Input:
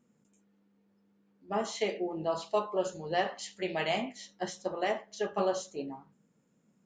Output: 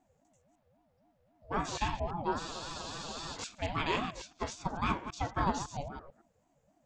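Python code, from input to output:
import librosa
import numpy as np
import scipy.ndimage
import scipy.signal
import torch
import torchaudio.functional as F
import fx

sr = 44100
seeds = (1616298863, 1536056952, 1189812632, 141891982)

y = fx.reverse_delay(x, sr, ms=111, wet_db=-9.0)
y = fx.spec_freeze(y, sr, seeds[0], at_s=2.41, hold_s=0.94)
y = fx.ring_lfo(y, sr, carrier_hz=400.0, swing_pct=30, hz=3.7)
y = F.gain(torch.from_numpy(y), 1.5).numpy()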